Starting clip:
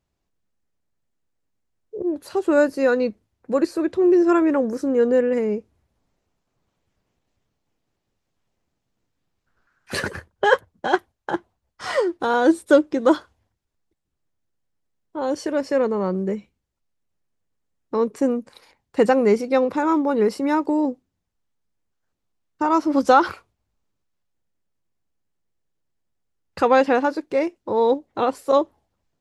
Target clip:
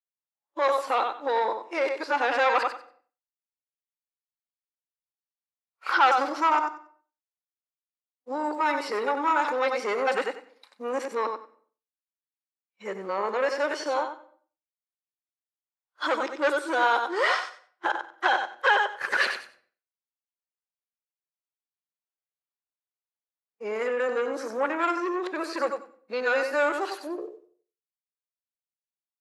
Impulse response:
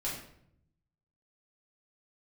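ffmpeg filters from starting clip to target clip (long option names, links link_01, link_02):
-filter_complex "[0:a]areverse,agate=range=-33dB:threshold=-39dB:ratio=3:detection=peak,aecho=1:1:93|186|279:0.316|0.0569|0.0102,asoftclip=type=tanh:threshold=-12.5dB,alimiter=limit=-17.5dB:level=0:latency=1:release=21,highpass=960,highshelf=frequency=5300:gain=-9,asplit=2[link_01][link_02];[1:a]atrim=start_sample=2205,afade=type=out:start_time=0.39:duration=0.01,atrim=end_sample=17640[link_03];[link_02][link_03]afir=irnorm=-1:irlink=0,volume=-15.5dB[link_04];[link_01][link_04]amix=inputs=2:normalize=0,acrossover=split=4800[link_05][link_06];[link_06]acompressor=threshold=-53dB:ratio=4:attack=1:release=60[link_07];[link_05][link_07]amix=inputs=2:normalize=0,volume=7dB"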